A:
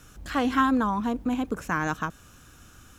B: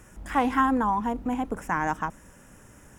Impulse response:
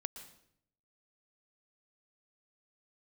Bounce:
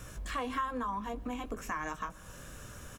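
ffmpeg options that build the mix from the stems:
-filter_complex "[0:a]flanger=delay=17:depth=3.3:speed=0.72,volume=2.5dB,asplit=2[link_01][link_02];[link_02]volume=-12.5dB[link_03];[1:a]aecho=1:1:1.8:0.74,volume=-1,volume=-1dB,asplit=2[link_04][link_05];[link_05]apad=whole_len=131609[link_06];[link_01][link_06]sidechaincompress=threshold=-27dB:ratio=8:attack=5.9:release=312[link_07];[2:a]atrim=start_sample=2205[link_08];[link_03][link_08]afir=irnorm=-1:irlink=0[link_09];[link_07][link_04][link_09]amix=inputs=3:normalize=0,acompressor=threshold=-41dB:ratio=2"

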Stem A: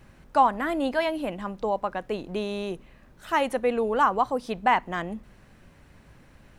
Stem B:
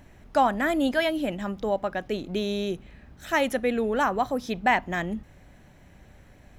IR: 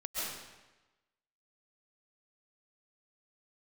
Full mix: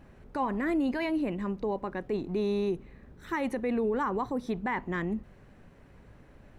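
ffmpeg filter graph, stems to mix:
-filter_complex "[0:a]volume=-2dB[link_01];[1:a]equalizer=frequency=430:width_type=o:width=0.57:gain=10.5,volume=-8dB[link_02];[link_01][link_02]amix=inputs=2:normalize=0,highshelf=frequency=2600:gain=-9.5,alimiter=limit=-22dB:level=0:latency=1:release=31"

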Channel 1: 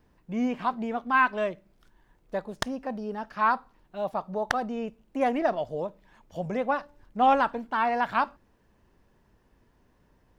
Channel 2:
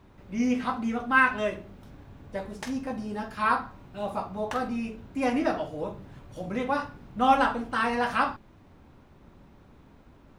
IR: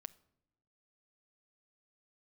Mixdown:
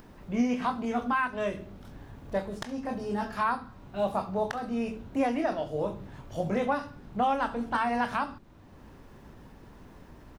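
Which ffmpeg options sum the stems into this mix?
-filter_complex "[0:a]acompressor=mode=upward:threshold=-42dB:ratio=2.5,volume=0.5dB[link_01];[1:a]equalizer=frequency=2300:width=1.5:gain=-2.5,acrossover=split=380|1600|5000[link_02][link_03][link_04][link_05];[link_02]acompressor=threshold=-31dB:ratio=4[link_06];[link_03]acompressor=threshold=-38dB:ratio=4[link_07];[link_04]acompressor=threshold=-42dB:ratio=4[link_08];[link_05]acompressor=threshold=-54dB:ratio=4[link_09];[link_06][link_07][link_08][link_09]amix=inputs=4:normalize=0,volume=-1,adelay=18,volume=1dB[link_10];[link_01][link_10]amix=inputs=2:normalize=0,alimiter=limit=-17.5dB:level=0:latency=1:release=438"

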